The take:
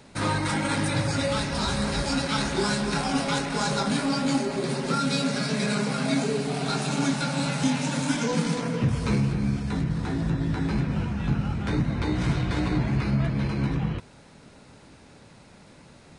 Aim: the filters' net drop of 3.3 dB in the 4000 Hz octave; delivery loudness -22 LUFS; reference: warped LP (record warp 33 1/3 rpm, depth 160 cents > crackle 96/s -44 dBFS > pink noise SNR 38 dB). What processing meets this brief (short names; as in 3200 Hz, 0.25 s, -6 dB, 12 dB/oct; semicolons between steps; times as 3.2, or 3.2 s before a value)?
bell 4000 Hz -4 dB; record warp 33 1/3 rpm, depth 160 cents; crackle 96/s -44 dBFS; pink noise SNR 38 dB; gain +4.5 dB